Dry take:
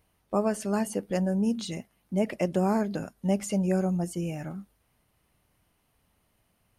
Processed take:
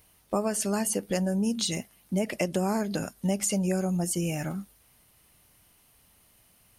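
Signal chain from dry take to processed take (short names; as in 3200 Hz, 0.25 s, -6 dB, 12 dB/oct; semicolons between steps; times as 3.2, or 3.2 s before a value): high shelf 3000 Hz +11.5 dB; compressor 3:1, threshold -29 dBFS, peak gain reduction 7.5 dB; gain +4 dB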